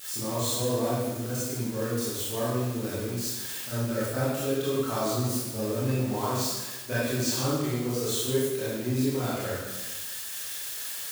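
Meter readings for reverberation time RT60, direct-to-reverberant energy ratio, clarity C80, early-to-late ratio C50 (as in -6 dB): 1.2 s, -10.5 dB, 0.5 dB, -3.0 dB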